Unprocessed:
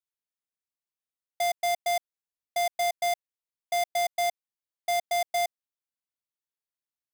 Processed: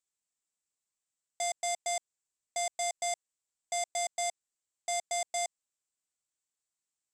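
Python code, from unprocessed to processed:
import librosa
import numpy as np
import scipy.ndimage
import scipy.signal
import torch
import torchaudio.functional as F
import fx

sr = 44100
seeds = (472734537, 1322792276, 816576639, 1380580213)

y = 10.0 ** (-32.5 / 20.0) * np.tanh(x / 10.0 ** (-32.5 / 20.0))
y = fx.lowpass_res(y, sr, hz=7700.0, q=5.9)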